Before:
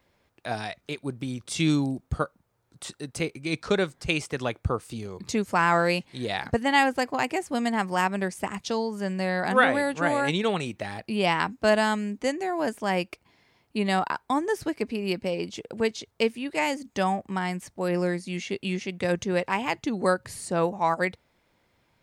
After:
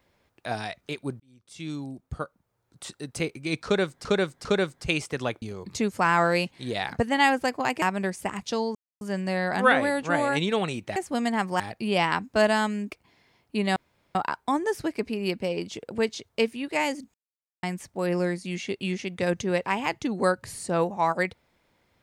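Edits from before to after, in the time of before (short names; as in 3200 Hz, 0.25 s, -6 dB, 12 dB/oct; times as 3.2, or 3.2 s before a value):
1.2–3.13 fade in
3.65–4.05 loop, 3 plays
4.62–4.96 cut
7.36–8 move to 10.88
8.93 insert silence 0.26 s
12.18–13.11 cut
13.97 insert room tone 0.39 s
16.96–17.45 mute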